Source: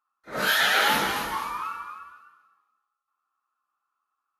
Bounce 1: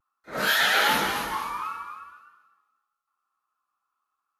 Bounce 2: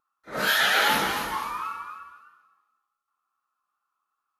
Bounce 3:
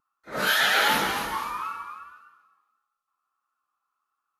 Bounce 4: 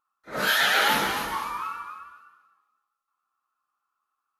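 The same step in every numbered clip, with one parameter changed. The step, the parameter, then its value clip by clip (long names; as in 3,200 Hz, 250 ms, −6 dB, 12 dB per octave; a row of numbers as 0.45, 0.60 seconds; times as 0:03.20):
pitch vibrato, speed: 0.46, 2.7, 1.5, 6.9 Hertz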